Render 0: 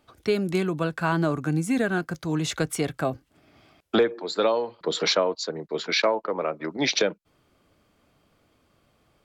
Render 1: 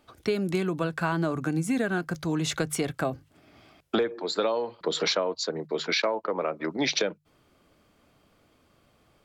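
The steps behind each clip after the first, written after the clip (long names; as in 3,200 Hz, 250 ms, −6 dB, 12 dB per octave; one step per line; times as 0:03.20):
mains-hum notches 50/100/150 Hz
downward compressor 2.5 to 1, threshold −26 dBFS, peak gain reduction 7.5 dB
level +1.5 dB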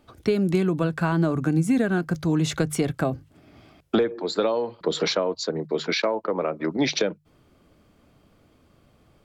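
low-shelf EQ 430 Hz +8 dB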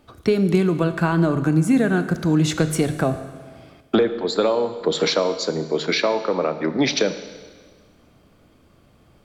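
four-comb reverb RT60 1.6 s, combs from 26 ms, DRR 10.5 dB
level +3.5 dB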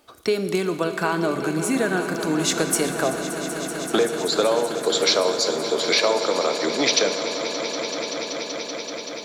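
bass and treble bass −15 dB, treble +7 dB
echo that builds up and dies away 191 ms, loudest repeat 5, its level −13.5 dB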